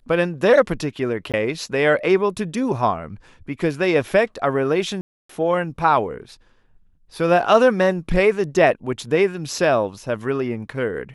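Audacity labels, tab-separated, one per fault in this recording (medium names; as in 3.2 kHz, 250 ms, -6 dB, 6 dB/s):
1.320000	1.340000	dropout 17 ms
5.010000	5.290000	dropout 284 ms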